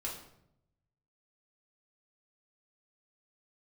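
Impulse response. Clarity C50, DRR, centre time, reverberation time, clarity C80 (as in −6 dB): 5.5 dB, −4.5 dB, 35 ms, 0.75 s, 9.0 dB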